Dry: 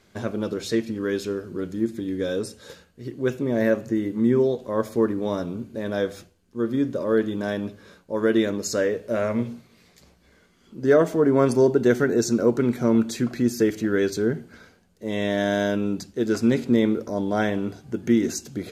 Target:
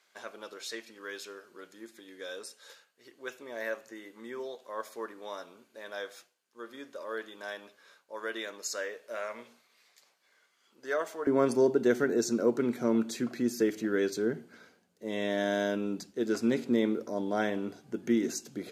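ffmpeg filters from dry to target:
ffmpeg -i in.wav -af "asetnsamples=nb_out_samples=441:pad=0,asendcmd='11.27 highpass f 210',highpass=840,volume=-6dB" out.wav

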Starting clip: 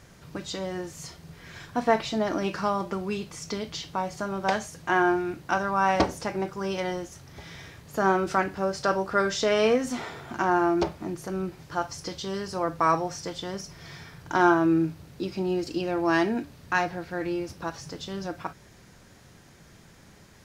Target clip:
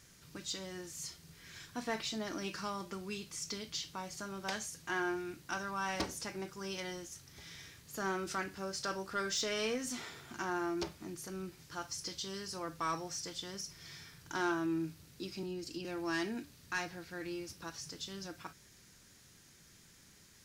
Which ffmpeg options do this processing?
ffmpeg -i in.wav -filter_complex "[0:a]bass=frequency=250:gain=-6,treble=frequency=4000:gain=6,asettb=1/sr,asplit=3[link_01][link_02][link_03];[link_01]atrim=end=15.434[link_04];[link_02]atrim=start=15.43:end=15.85,asetpts=PTS-STARTPTS,afade=type=in:duration=0.004:curve=qsin,afade=type=out:start_time=0.416:duration=0.004:curve=qsin,acrossover=split=330[link_05][link_06];[link_06]acompressor=threshold=-35dB:ratio=6[link_07];[link_05][link_07]amix=inputs=2:normalize=0[link_08];[link_03]atrim=start=15.846[link_09];[link_04][link_08]acrossfade=duration=0.004:curve1=hsin:curve2=qsin[link_10];[link_10][link_09]acrossfade=duration=0.004:curve1=qsin:curve2=hsin,equalizer=frequency=680:width=0.79:gain=-10.5,asoftclip=type=tanh:threshold=-20dB,volume=-6dB" out.wav

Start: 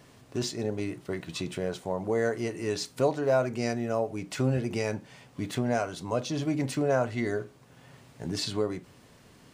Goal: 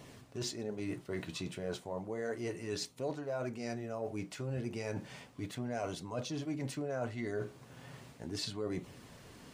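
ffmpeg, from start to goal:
ffmpeg -i in.wav -af "areverse,acompressor=threshold=-37dB:ratio=6,areverse,flanger=delay=0.3:depth=9.4:regen=-61:speed=0.34:shape=sinusoidal,volume=5.5dB" out.wav

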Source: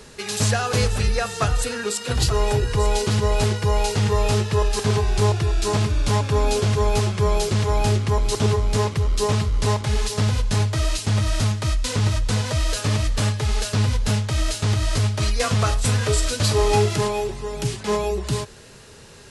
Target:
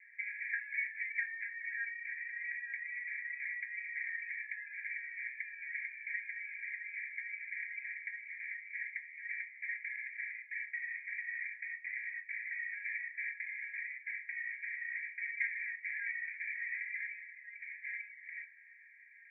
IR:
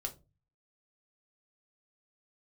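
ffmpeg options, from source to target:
-filter_complex "[0:a]asuperpass=centerf=2000:order=20:qfactor=2.7[link_01];[1:a]atrim=start_sample=2205[link_02];[link_01][link_02]afir=irnorm=-1:irlink=0,volume=1dB"

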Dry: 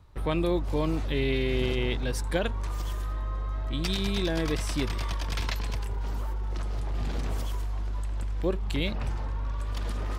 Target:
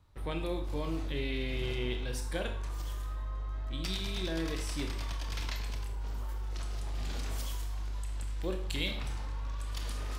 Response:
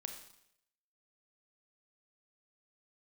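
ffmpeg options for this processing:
-filter_complex "[0:a]asetnsamples=nb_out_samples=441:pad=0,asendcmd='6.29 highshelf g 12',highshelf=frequency=2100:gain=4.5[link_01];[1:a]atrim=start_sample=2205,asetrate=57330,aresample=44100[link_02];[link_01][link_02]afir=irnorm=-1:irlink=0,volume=-3.5dB"

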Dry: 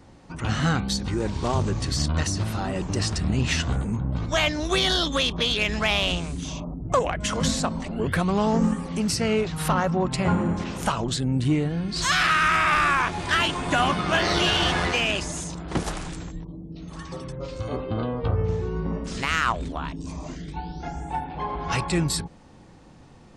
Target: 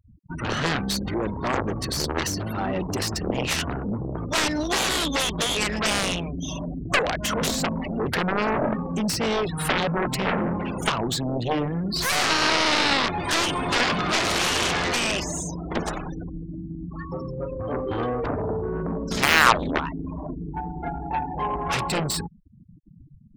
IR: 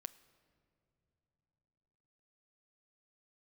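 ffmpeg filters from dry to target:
-filter_complex "[0:a]asettb=1/sr,asplit=3[link_01][link_02][link_03];[link_01]atrim=end=17.864[link_04];[link_02]atrim=start=17.86:end=18.26,asetpts=PTS-STARTPTS,afade=type=in:duration=0.004:curve=qsin,afade=type=out:start_time=0.396:duration=0.004:curve=qsin,aecho=1:1:2.6:0.63,atrim=end_sample=17640[link_05];[link_03]atrim=start=18.256[link_06];[link_04][link_05]acrossfade=duration=0.004:curve1=hsin:curve2=qsin[link_07];[link_07][link_06]acrossfade=duration=0.004:curve1=qsin:curve2=hsin,asettb=1/sr,asplit=3[link_08][link_09][link_10];[link_08]atrim=end=19.114[link_11];[link_09]atrim=start=19.11:end=19.8,asetpts=PTS-STARTPTS,afade=type=in:duration=0.004:curve=qsin,afade=type=out:start_time=0.686:duration=0.004:curve=qsin,acontrast=64[link_12];[link_10]atrim=start=19.796[link_13];[link_11][link_12]acrossfade=duration=0.004:curve1=hsin:curve2=qsin[link_14];[link_14][link_13]acrossfade=duration=0.004:curve1=qsin:curve2=hsin,afftfilt=real='re*gte(hypot(re,im),0.0224)':imag='im*gte(hypot(re,im),0.0224)':win_size=1024:overlap=0.75,aeval=exprs='0.531*(cos(1*acos(clip(val(0)/0.531,-1,1)))-cos(1*PI/2))+0.188*(cos(7*acos(clip(val(0)/0.531,-1,1)))-cos(7*PI/2))':channel_layout=same,acrossover=split=170|4000[link_15][link_16][link_17];[link_15]acompressor=threshold=-37dB:ratio=4[link_18];[link_17]acompressor=threshold=-29dB:ratio=4[link_19];[link_18][link_16][link_19]amix=inputs=3:normalize=0,volume=1.5dB"

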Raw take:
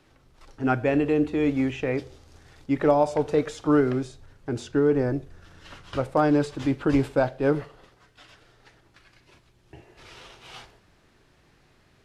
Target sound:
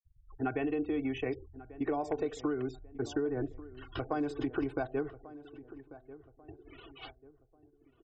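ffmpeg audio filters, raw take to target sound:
ffmpeg -i in.wav -filter_complex "[0:a]afftfilt=real='re*gte(hypot(re,im),0.00891)':imag='im*gte(hypot(re,im),0.00891)':win_size=1024:overlap=0.75,aecho=1:1:2.7:0.68,acompressor=threshold=-24dB:ratio=16,atempo=1.5,asplit=2[link_01][link_02];[link_02]adelay=1141,lowpass=frequency=1100:poles=1,volume=-16dB,asplit=2[link_03][link_04];[link_04]adelay=1141,lowpass=frequency=1100:poles=1,volume=0.43,asplit=2[link_05][link_06];[link_06]adelay=1141,lowpass=frequency=1100:poles=1,volume=0.43,asplit=2[link_07][link_08];[link_08]adelay=1141,lowpass=frequency=1100:poles=1,volume=0.43[link_09];[link_01][link_03][link_05][link_07][link_09]amix=inputs=5:normalize=0,volume=-4.5dB" out.wav

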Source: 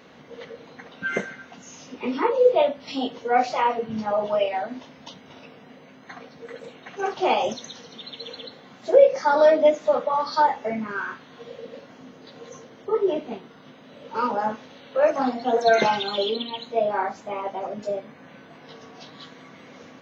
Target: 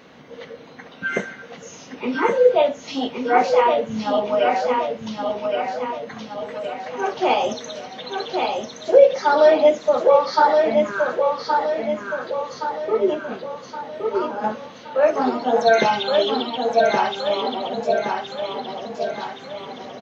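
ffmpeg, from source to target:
ffmpeg -i in.wav -filter_complex "[0:a]asettb=1/sr,asplit=3[link_01][link_02][link_03];[link_01]atrim=end=13.144[link_04];[link_02]atrim=start=13.14:end=14.44,asetpts=PTS-STARTPTS,afade=type=in:duration=0.004:curve=qsin,afade=type=out:start_time=1.296:duration=0.004:curve=qsin,acompressor=threshold=-28dB:ratio=6[link_05];[link_03]atrim=start=14.436[link_06];[link_04][link_05]acrossfade=duration=0.004:curve1=hsin:curve2=qsin[link_07];[link_07][link_06]acrossfade=duration=0.004:curve1=qsin:curve2=hsin,aecho=1:1:1120|2240|3360|4480|5600|6720:0.631|0.309|0.151|0.0742|0.0364|0.0178,volume=2.5dB" out.wav

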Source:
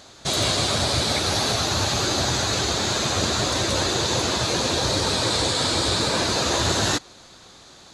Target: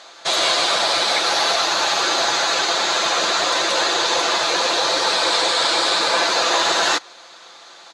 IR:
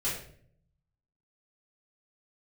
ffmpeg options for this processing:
-af "highpass=690,aemphasis=mode=reproduction:type=50fm,aecho=1:1:5.9:0.37,volume=8dB"

